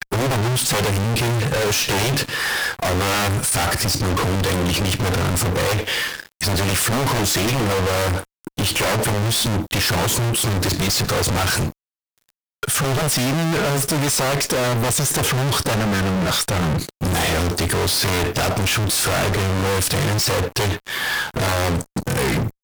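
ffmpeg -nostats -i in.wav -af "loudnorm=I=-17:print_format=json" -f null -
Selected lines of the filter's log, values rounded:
"input_i" : "-19.7",
"input_tp" : "-13.6",
"input_lra" : "1.7",
"input_thresh" : "-29.8",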